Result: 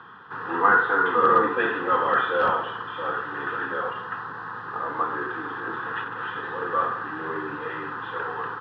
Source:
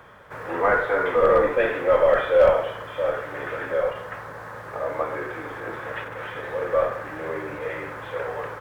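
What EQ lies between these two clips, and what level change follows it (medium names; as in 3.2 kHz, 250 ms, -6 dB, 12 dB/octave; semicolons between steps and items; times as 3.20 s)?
band-pass 200–3100 Hz; static phaser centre 2.2 kHz, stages 6; +6.0 dB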